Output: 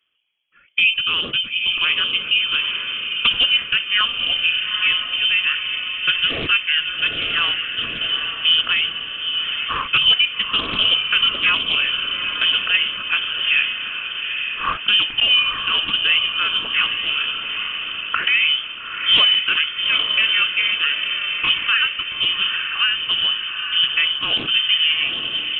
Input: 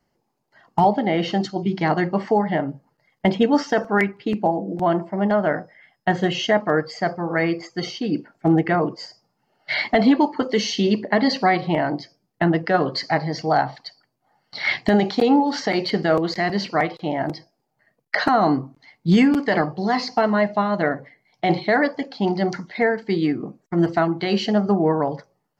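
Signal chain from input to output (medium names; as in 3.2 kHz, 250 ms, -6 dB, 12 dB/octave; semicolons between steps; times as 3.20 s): echo that smears into a reverb 860 ms, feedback 55%, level -5.5 dB; frequency inversion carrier 3.3 kHz; loudspeaker Doppler distortion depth 0.28 ms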